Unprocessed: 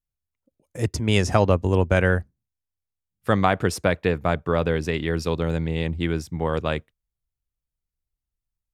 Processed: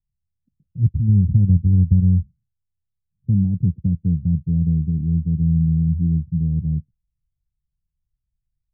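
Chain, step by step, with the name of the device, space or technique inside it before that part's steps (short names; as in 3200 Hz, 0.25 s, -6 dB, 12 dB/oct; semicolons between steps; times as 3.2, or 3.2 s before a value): the neighbour's flat through the wall (LPF 170 Hz 24 dB/oct; bell 170 Hz +5.5 dB 0.97 oct); gain +7 dB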